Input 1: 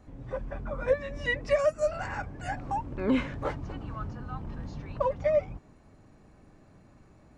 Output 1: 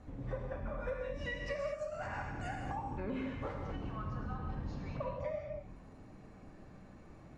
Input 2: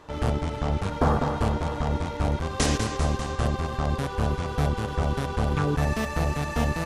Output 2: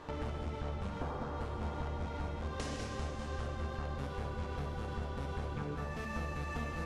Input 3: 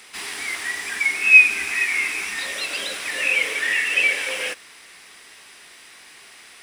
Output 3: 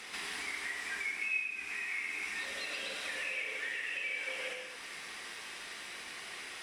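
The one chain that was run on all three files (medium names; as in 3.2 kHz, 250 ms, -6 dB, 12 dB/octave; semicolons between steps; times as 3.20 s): compression 8:1, threshold -38 dBFS; treble shelf 6.7 kHz -9 dB; gated-style reverb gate 250 ms flat, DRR 0.5 dB; Vorbis 96 kbps 44.1 kHz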